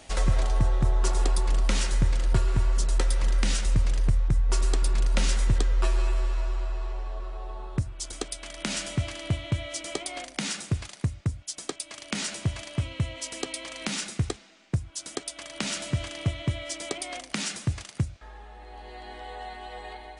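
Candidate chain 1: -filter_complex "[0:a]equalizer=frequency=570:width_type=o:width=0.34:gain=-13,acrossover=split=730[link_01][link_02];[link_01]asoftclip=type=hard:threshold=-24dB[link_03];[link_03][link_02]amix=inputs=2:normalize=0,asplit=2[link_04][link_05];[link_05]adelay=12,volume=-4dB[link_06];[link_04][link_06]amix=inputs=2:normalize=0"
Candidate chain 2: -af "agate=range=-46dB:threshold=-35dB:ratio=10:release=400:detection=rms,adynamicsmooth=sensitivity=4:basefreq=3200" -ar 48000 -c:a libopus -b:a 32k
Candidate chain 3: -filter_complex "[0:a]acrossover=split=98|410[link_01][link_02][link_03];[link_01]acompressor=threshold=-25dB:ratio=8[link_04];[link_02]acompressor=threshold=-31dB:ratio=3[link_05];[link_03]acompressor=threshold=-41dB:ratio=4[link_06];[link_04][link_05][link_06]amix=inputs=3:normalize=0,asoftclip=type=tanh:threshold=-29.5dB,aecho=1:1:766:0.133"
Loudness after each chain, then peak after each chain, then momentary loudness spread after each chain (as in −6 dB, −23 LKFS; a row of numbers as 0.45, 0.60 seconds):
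−32.5, −29.5, −39.0 LKFS; −12.0, −10.5, −28.5 dBFS; 10, 13, 6 LU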